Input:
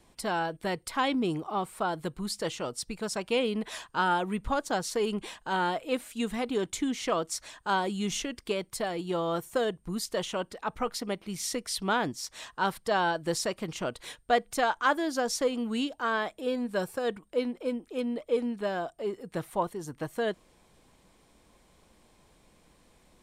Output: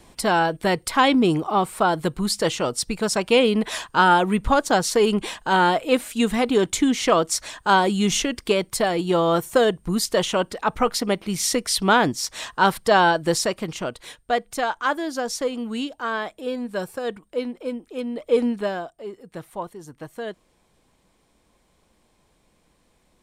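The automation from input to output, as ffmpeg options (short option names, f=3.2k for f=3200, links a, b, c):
-af "volume=18dB,afade=t=out:st=13:d=1.02:silence=0.398107,afade=t=in:st=18.13:d=0.29:silence=0.421697,afade=t=out:st=18.42:d=0.48:silence=0.251189"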